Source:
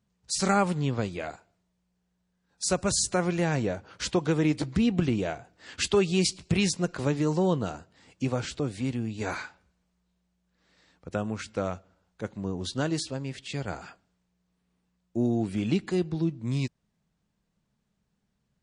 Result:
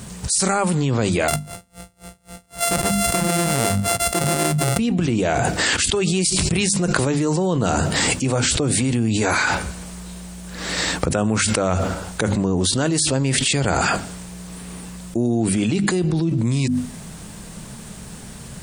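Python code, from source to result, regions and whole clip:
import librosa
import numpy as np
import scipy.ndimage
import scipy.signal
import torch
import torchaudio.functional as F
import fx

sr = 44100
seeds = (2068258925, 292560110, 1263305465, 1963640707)

y = fx.chain(x, sr, fx.sample_sort(block=64),
    fx.tremolo_db(hz=3.8, depth_db=30), at=(1.28, 4.79))
y = fx.peak_eq(y, sr, hz=9000.0, db=14.0, octaves=0.59)
y = fx.hum_notches(y, sr, base_hz=50, count=5)
y = fx.env_flatten(y, sr, amount_pct=100)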